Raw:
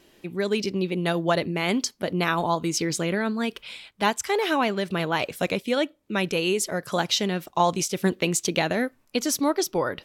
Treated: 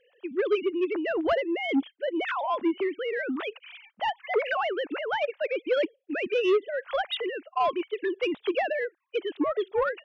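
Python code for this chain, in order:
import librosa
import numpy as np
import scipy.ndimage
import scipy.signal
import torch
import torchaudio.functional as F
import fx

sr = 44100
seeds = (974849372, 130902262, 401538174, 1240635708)

y = fx.sine_speech(x, sr)
y = 10.0 ** (-16.5 / 20.0) * np.tanh(y / 10.0 ** (-16.5 / 20.0))
y = F.gain(torch.from_numpy(y), -1.0).numpy()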